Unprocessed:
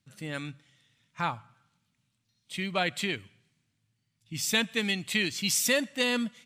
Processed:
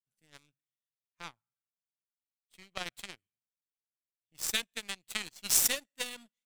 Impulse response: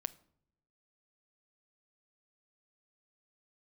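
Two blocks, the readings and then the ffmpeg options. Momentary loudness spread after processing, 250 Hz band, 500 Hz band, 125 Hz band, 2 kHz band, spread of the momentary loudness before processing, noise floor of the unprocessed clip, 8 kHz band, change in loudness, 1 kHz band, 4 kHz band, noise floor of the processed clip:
23 LU, −19.5 dB, −15.0 dB, −19.5 dB, −10.0 dB, 12 LU, −78 dBFS, +0.5 dB, −3.0 dB, −12.0 dB, −6.0 dB, below −85 dBFS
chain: -af "crystalizer=i=2:c=0,aeval=exprs='0.596*(cos(1*acos(clip(val(0)/0.596,-1,1)))-cos(1*PI/2))+0.015*(cos(4*acos(clip(val(0)/0.596,-1,1)))-cos(4*PI/2))+0.0841*(cos(7*acos(clip(val(0)/0.596,-1,1)))-cos(7*PI/2))':channel_layout=same,volume=-4dB"

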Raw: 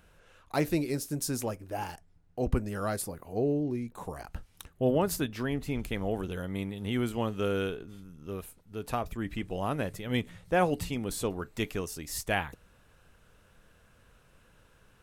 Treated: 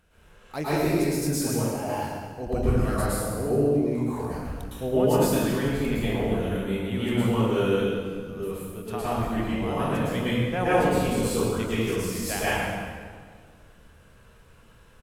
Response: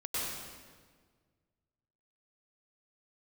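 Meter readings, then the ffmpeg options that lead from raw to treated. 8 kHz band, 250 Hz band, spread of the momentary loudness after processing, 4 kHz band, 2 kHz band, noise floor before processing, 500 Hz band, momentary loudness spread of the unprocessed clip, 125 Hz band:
+5.0 dB, +7.0 dB, 11 LU, +5.5 dB, +5.5 dB, −62 dBFS, +7.0 dB, 13 LU, +7.5 dB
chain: -filter_complex "[0:a]asplit=2[link_01][link_02];[link_02]adelay=26,volume=-14dB[link_03];[link_01][link_03]amix=inputs=2:normalize=0[link_04];[1:a]atrim=start_sample=2205,asetrate=39249,aresample=44100[link_05];[link_04][link_05]afir=irnorm=-1:irlink=0"

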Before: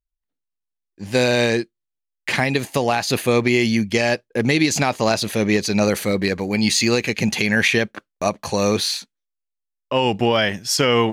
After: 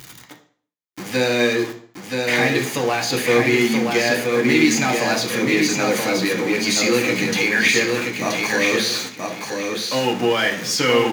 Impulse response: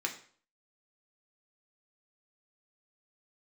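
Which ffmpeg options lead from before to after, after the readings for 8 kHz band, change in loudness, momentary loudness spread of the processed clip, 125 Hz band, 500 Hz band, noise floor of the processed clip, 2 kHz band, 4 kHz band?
+2.0 dB, +0.5 dB, 9 LU, −4.5 dB, +0.5 dB, −55 dBFS, +3.0 dB, +1.0 dB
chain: -filter_complex "[0:a]aeval=exprs='val(0)+0.5*0.0944*sgn(val(0))':channel_layout=same,highpass=100,aecho=1:1:977|1954|2931:0.631|0.139|0.0305[link_01];[1:a]atrim=start_sample=2205,asetrate=41895,aresample=44100[link_02];[link_01][link_02]afir=irnorm=-1:irlink=0,volume=-6dB"

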